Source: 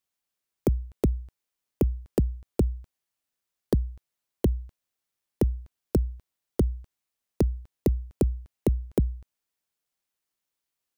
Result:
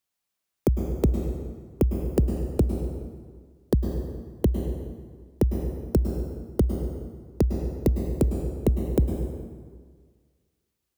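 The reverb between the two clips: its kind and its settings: plate-style reverb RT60 1.7 s, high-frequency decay 0.7×, pre-delay 95 ms, DRR 4 dB; trim +1.5 dB

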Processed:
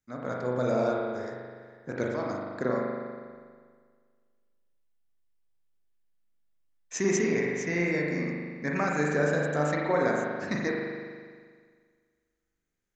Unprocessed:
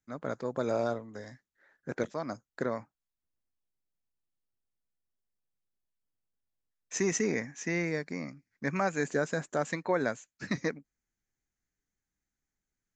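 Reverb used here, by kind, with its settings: spring tank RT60 1.8 s, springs 40 ms, chirp 20 ms, DRR -2.5 dB

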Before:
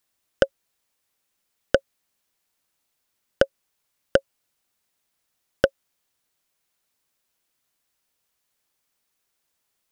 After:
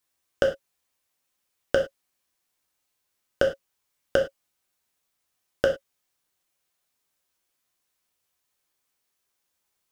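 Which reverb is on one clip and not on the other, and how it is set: gated-style reverb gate 130 ms falling, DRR 0.5 dB; trim -4.5 dB

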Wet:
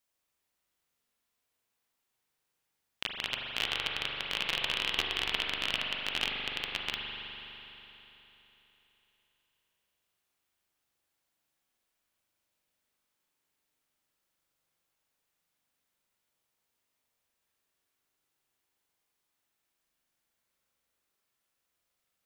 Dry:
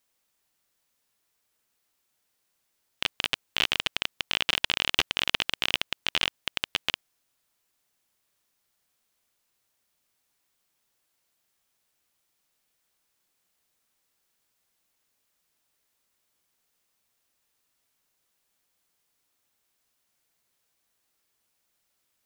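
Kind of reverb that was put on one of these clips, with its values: spring tank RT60 3.6 s, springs 41 ms, chirp 35 ms, DRR -1 dB; trim -7.5 dB

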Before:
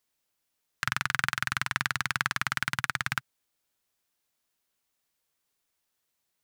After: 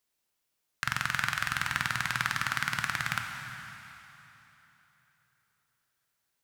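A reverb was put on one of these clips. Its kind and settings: plate-style reverb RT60 3.5 s, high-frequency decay 0.9×, DRR 3.5 dB; trim -2 dB

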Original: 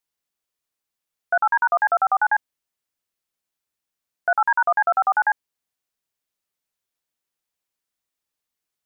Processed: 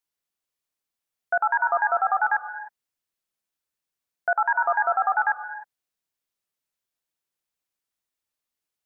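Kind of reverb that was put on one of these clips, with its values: gated-style reverb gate 330 ms rising, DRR 11 dB; trim -3 dB

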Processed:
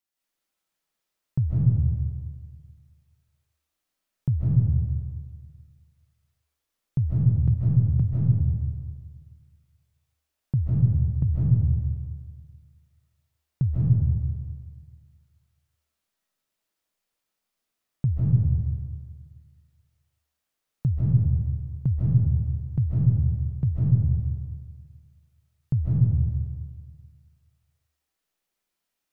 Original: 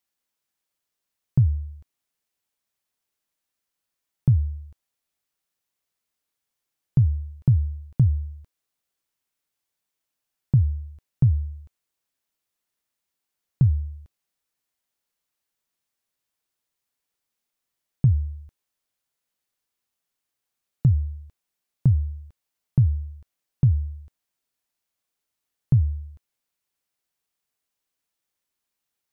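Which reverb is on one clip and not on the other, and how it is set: algorithmic reverb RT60 1.7 s, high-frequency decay 0.55×, pre-delay 115 ms, DRR -8 dB; trim -6 dB

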